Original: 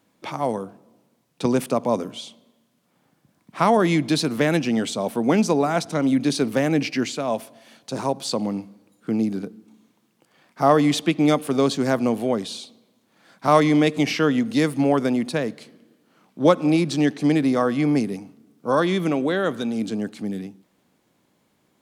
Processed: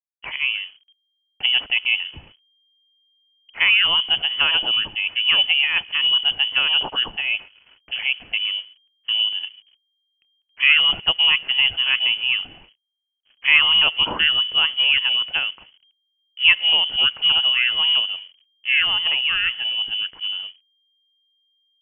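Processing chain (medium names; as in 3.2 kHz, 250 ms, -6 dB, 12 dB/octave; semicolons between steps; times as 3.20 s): hysteresis with a dead band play -41 dBFS; frequency inversion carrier 3.2 kHz; trim +1 dB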